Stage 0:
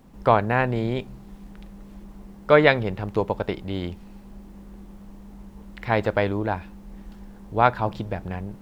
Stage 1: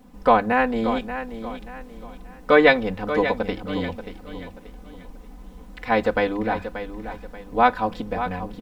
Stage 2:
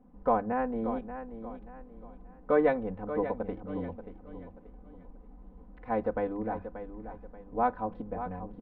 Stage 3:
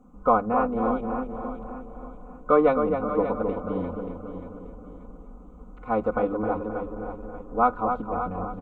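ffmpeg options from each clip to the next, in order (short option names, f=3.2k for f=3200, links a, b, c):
-filter_complex "[0:a]bandreject=f=50:t=h:w=6,bandreject=f=100:t=h:w=6,bandreject=f=150:t=h:w=6,bandreject=f=200:t=h:w=6,aecho=1:1:4:0.98,asplit=2[a][b];[b]aecho=0:1:583|1166|1749|2332:0.299|0.104|0.0366|0.0128[c];[a][c]amix=inputs=2:normalize=0,volume=-1dB"
-af "lowpass=1k,volume=-8.5dB"
-filter_complex "[0:a]superequalizer=10b=2.82:11b=0.282:15b=3.55,asplit=2[a][b];[b]adelay=264,lowpass=f=2.1k:p=1,volume=-6dB,asplit=2[c][d];[d]adelay=264,lowpass=f=2.1k:p=1,volume=0.55,asplit=2[e][f];[f]adelay=264,lowpass=f=2.1k:p=1,volume=0.55,asplit=2[g][h];[h]adelay=264,lowpass=f=2.1k:p=1,volume=0.55,asplit=2[i][j];[j]adelay=264,lowpass=f=2.1k:p=1,volume=0.55,asplit=2[k][l];[l]adelay=264,lowpass=f=2.1k:p=1,volume=0.55,asplit=2[m][n];[n]adelay=264,lowpass=f=2.1k:p=1,volume=0.55[o];[c][e][g][i][k][m][o]amix=inputs=7:normalize=0[p];[a][p]amix=inputs=2:normalize=0,volume=5dB"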